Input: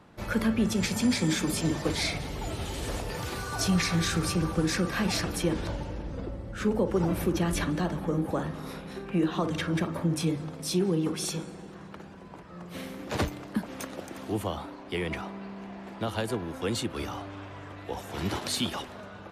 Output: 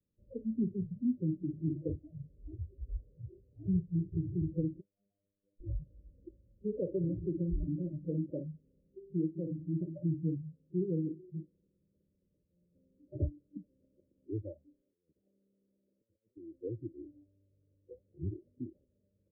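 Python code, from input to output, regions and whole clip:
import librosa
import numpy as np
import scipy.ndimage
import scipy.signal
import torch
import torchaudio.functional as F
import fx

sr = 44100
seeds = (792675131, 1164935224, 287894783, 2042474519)

y = fx.chain(x, sr, fx.formant_cascade(vowel='a'),
    fx.peak_eq(hz=290.0, db=5.5, octaves=2.2),
    fx.robotise(hz=100.0), at=(4.8, 5.6))
y = fx.chain(y, sr, fx.highpass(hz=560.0, slope=6),
    fx.over_compress(threshold_db=-41.0, ratio=-0.5), at=(14.81, 16.37))
y = scipy.signal.sosfilt(scipy.signal.cheby1(10, 1.0, 600.0, 'lowpass', fs=sr, output='sos'), y)
y = fx.noise_reduce_blind(y, sr, reduce_db=26)
y = fx.low_shelf(y, sr, hz=130.0, db=12.0)
y = y * librosa.db_to_amplitude(-8.0)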